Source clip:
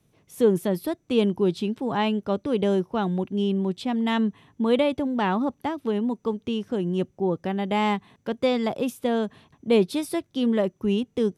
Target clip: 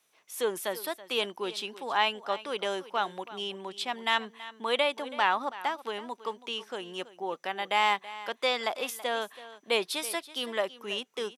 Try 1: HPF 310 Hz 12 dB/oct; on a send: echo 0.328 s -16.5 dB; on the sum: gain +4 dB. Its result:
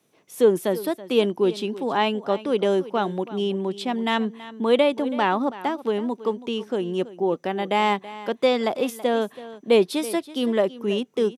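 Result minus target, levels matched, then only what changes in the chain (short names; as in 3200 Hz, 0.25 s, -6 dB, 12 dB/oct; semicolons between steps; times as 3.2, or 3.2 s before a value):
250 Hz band +10.5 dB
change: HPF 970 Hz 12 dB/oct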